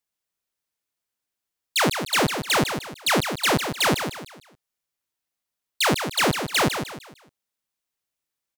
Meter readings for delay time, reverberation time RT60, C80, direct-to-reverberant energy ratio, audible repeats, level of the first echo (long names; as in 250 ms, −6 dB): 152 ms, no reverb audible, no reverb audible, no reverb audible, 3, −8.0 dB